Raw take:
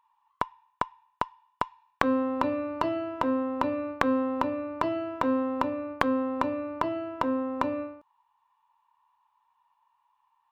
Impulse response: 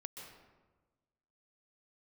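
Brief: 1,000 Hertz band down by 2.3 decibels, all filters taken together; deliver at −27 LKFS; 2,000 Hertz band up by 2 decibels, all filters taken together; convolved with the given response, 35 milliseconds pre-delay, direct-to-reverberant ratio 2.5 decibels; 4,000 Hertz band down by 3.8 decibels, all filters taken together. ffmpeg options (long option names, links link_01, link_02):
-filter_complex "[0:a]equalizer=frequency=1000:width_type=o:gain=-3.5,equalizer=frequency=2000:width_type=o:gain=5.5,equalizer=frequency=4000:width_type=o:gain=-8,asplit=2[link_01][link_02];[1:a]atrim=start_sample=2205,adelay=35[link_03];[link_02][link_03]afir=irnorm=-1:irlink=0,volume=1dB[link_04];[link_01][link_04]amix=inputs=2:normalize=0,volume=1.5dB"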